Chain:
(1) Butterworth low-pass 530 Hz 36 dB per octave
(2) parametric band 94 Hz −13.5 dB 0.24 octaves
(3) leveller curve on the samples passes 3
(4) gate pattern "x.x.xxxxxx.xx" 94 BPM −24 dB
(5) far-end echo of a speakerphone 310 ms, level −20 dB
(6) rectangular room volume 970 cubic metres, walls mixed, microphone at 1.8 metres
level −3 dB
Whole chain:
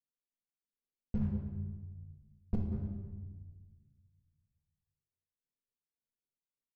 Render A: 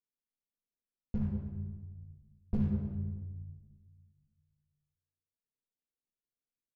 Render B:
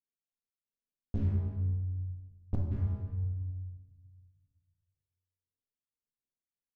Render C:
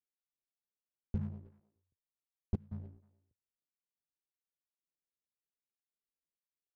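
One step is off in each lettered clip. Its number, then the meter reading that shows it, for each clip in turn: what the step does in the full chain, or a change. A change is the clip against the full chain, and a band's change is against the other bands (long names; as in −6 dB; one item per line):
4, 250 Hz band +2.0 dB
2, change in crest factor −3.5 dB
6, echo-to-direct ratio 0.5 dB to −24.5 dB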